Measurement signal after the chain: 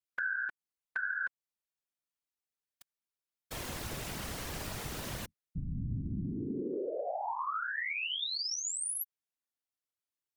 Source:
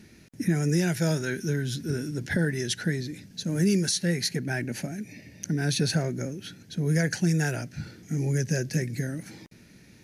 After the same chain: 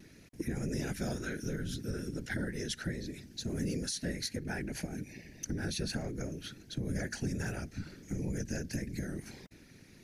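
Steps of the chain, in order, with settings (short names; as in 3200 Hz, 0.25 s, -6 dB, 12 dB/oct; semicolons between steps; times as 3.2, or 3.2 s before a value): dynamic EQ 110 Hz, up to +4 dB, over -52 dBFS, Q 7.4; whisperiser; vibrato 0.39 Hz 8.1 cents; compressor 2.5:1, threshold -32 dBFS; gain -3.5 dB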